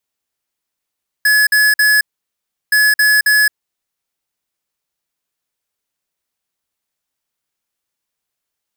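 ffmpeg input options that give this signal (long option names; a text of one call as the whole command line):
ffmpeg -f lavfi -i "aevalsrc='0.282*(2*lt(mod(1700*t,1),0.5)-1)*clip(min(mod(mod(t,1.47),0.27),0.22-mod(mod(t,1.47),0.27))/0.005,0,1)*lt(mod(t,1.47),0.81)':duration=2.94:sample_rate=44100" out.wav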